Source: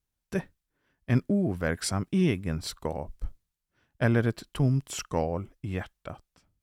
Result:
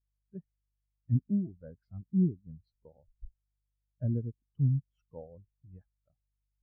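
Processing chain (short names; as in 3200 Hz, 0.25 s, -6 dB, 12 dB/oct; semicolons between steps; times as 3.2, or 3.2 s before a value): treble ducked by the level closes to 1100 Hz, closed at -22.5 dBFS; hum 50 Hz, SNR 16 dB; spectral expander 2.5:1; gain -4 dB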